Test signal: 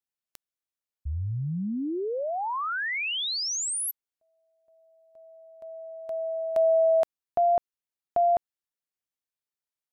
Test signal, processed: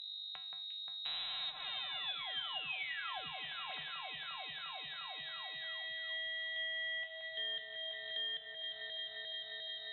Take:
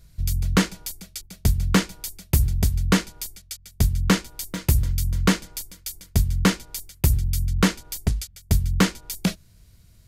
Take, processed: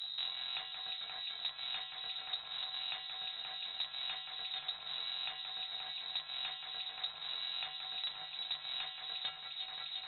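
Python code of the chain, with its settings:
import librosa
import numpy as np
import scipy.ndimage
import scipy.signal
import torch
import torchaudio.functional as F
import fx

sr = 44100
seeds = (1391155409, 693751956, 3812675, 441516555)

p1 = fx.halfwave_hold(x, sr)
p2 = fx.rider(p1, sr, range_db=4, speed_s=0.5)
p3 = p1 + F.gain(torch.from_numpy(p2), 0.0).numpy()
p4 = fx.add_hum(p3, sr, base_hz=50, snr_db=28)
p5 = fx.transient(p4, sr, attack_db=-8, sustain_db=-4)
p6 = fx.comb_fb(p5, sr, f0_hz=150.0, decay_s=0.46, harmonics='odd', damping=0.2, mix_pct=90)
p7 = fx.freq_invert(p6, sr, carrier_hz=3900)
p8 = fx.low_shelf_res(p7, sr, hz=550.0, db=-7.0, q=3.0)
p9 = fx.env_lowpass_down(p8, sr, base_hz=450.0, full_db=-19.0)
p10 = p9 + fx.echo_alternate(p9, sr, ms=176, hz=2400.0, feedback_pct=84, wet_db=-8.0, dry=0)
p11 = fx.band_squash(p10, sr, depth_pct=100)
y = F.gain(torch.from_numpy(p11), -7.0).numpy()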